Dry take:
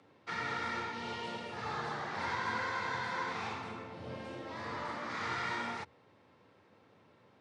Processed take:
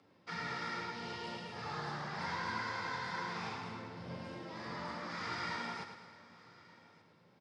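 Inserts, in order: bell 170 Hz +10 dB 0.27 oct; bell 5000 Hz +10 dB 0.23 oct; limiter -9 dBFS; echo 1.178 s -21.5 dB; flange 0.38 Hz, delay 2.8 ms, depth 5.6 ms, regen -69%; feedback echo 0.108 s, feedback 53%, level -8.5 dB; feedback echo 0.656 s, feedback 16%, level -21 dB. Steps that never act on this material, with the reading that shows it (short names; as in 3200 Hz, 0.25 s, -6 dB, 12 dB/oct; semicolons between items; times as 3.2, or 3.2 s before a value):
limiter -9 dBFS: input peak -22.0 dBFS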